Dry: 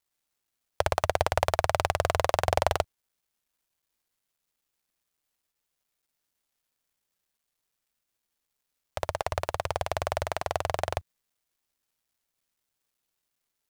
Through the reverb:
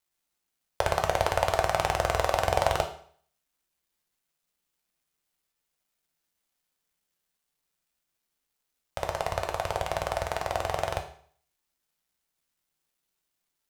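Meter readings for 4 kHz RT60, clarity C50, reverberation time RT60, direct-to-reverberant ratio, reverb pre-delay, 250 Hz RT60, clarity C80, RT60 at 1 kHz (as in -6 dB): 0.50 s, 10.5 dB, 0.55 s, 3.5 dB, 5 ms, 0.50 s, 13.5 dB, 0.55 s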